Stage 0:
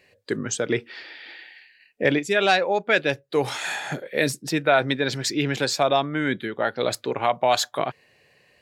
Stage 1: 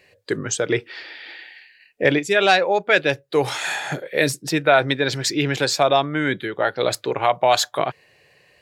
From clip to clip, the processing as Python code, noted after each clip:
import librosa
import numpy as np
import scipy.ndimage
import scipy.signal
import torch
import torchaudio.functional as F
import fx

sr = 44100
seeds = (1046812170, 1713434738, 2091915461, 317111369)

y = fx.peak_eq(x, sr, hz=230.0, db=-10.5, octaves=0.26)
y = F.gain(torch.from_numpy(y), 3.5).numpy()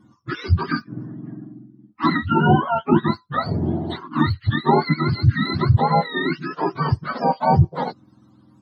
y = fx.octave_mirror(x, sr, pivot_hz=750.0)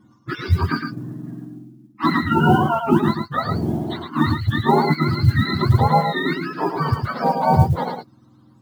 y = fx.mod_noise(x, sr, seeds[0], snr_db=34)
y = y + 10.0 ** (-5.5 / 20.0) * np.pad(y, (int(110 * sr / 1000.0), 0))[:len(y)]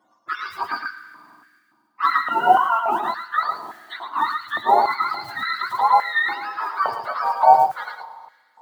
y = fx.rev_schroeder(x, sr, rt60_s=2.1, comb_ms=33, drr_db=13.0)
y = fx.filter_held_highpass(y, sr, hz=3.5, low_hz=660.0, high_hz=1700.0)
y = F.gain(torch.from_numpy(y), -4.0).numpy()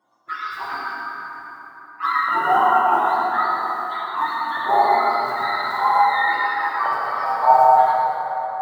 y = fx.rev_plate(x, sr, seeds[1], rt60_s=3.9, hf_ratio=0.5, predelay_ms=0, drr_db=-5.0)
y = F.gain(torch.from_numpy(y), -5.0).numpy()